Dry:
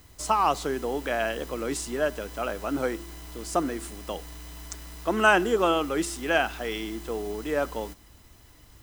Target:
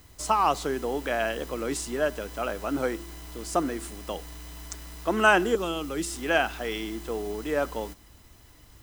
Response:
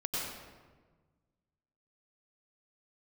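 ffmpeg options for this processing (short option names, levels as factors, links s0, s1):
-filter_complex "[0:a]asettb=1/sr,asplit=3[s0][s1][s2];[s0]atrim=end=5.554[s3];[s1]atrim=start=5.55:end=6.15,asetpts=PTS-STARTPTS,afade=t=in:d=0.004:c=qsin,afade=t=out:st=0.596:d=0.004:c=qsin,acrossover=split=290|3000[s4][s5][s6];[s5]acompressor=threshold=0.0178:ratio=3[s7];[s4][s7][s6]amix=inputs=3:normalize=0[s8];[s2]atrim=start=6.146[s9];[s3][s8]acrossfade=d=0.004:c1=hsin:c2=qsin[s10];[s10][s9]acrossfade=d=0.004:c1=qsin:c2=hsin"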